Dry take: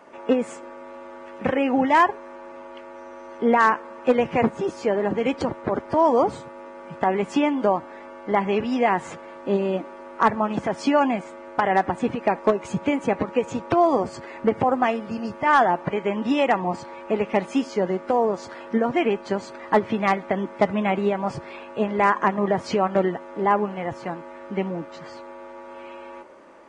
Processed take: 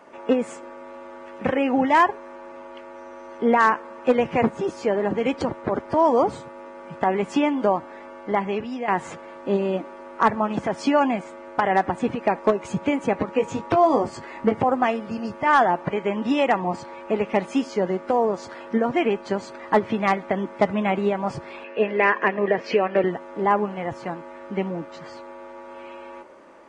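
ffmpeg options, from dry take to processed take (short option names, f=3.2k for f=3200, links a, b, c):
-filter_complex "[0:a]asettb=1/sr,asplit=3[a][b][c];[a]atrim=end=13.354[d];[b]atrim=start=13.35:end=14.61,asetpts=PTS-STARTPTS,afade=t=in:d=0.004:c=qsin,afade=t=out:st=1.256:d=0.004:c=qsin,asplit=2[e][f];[f]adelay=19,volume=-6.5dB[g];[e][g]amix=inputs=2:normalize=0,atrim=end_sample=55566[h];[c]atrim=start=14.606[i];[d][h]acrossfade=d=0.004:c1=hsin:c2=qsin[j];[j][i]acrossfade=d=0.004:c1=qsin:c2=hsin,asettb=1/sr,asplit=3[k][l][m];[k]atrim=end=21.644[n];[l]atrim=start=21.64:end=23.04,asetpts=PTS-STARTPTS,afade=t=in:d=0.004:c=qsin,afade=t=out:st=1.396:d=0.004:c=qsin,highpass=240,equalizer=f=460:t=q:w=4:g=7,equalizer=f=880:t=q:w=4:g=-6,equalizer=f=1.3k:t=q:w=4:g=-5,equalizer=f=1.8k:t=q:w=4:g=7,equalizer=f=2.6k:t=q:w=4:g=9,equalizer=f=3.7k:t=q:w=4:g=-5,lowpass=f=5.1k:w=0.5412,lowpass=f=5.1k:w=1.3066[o];[m]atrim=start=23.036[p];[n][o]acrossfade=d=0.004:c1=hsin:c2=qsin[q];[q][p]acrossfade=d=0.004:c1=qsin:c2=hsin,asplit=2[r][s];[r]atrim=end=8.88,asetpts=PTS-STARTPTS,afade=t=out:st=8.21:d=0.67:silence=0.298538[t];[s]atrim=start=8.88,asetpts=PTS-STARTPTS,afade=t=in:d=0.004:c=hsin:silence=0.298538[u];[t][u]concat=n=2:v=0:a=1"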